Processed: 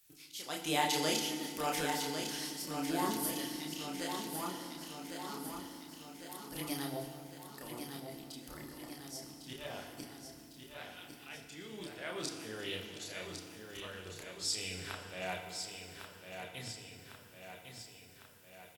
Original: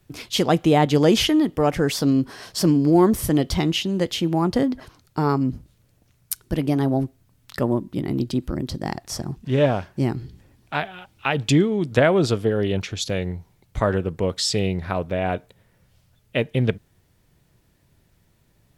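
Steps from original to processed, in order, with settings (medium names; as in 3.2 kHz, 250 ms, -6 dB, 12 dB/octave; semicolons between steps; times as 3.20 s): pre-emphasis filter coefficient 0.97; slow attack 405 ms; chorus voices 6, 1.3 Hz, delay 30 ms, depth 3 ms; feedback delay 1103 ms, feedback 58%, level -7 dB; FDN reverb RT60 2.1 s, low-frequency decay 1.6×, high-frequency decay 0.85×, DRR 5 dB; trim +6.5 dB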